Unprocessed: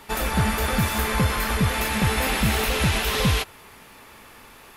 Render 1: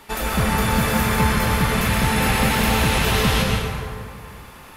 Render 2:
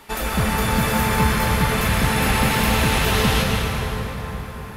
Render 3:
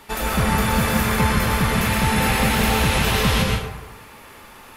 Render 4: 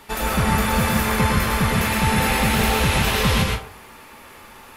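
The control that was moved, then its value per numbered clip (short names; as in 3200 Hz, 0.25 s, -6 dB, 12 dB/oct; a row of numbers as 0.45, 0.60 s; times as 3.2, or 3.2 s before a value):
plate-style reverb, RT60: 2.3, 5, 1.1, 0.52 s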